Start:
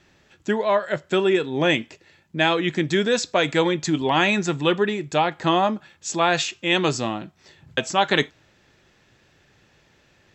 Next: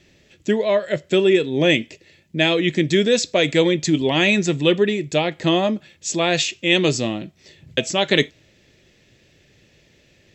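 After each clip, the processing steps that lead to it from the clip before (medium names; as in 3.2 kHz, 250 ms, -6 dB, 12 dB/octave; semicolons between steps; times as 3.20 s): high-order bell 1.1 kHz -11 dB 1.3 oct; trim +4 dB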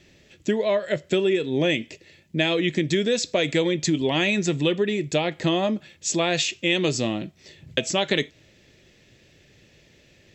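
compression 4:1, threshold -19 dBFS, peak gain reduction 8 dB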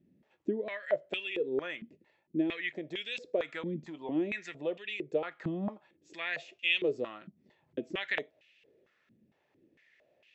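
step-sequenced band-pass 4.4 Hz 220–2700 Hz; trim -1 dB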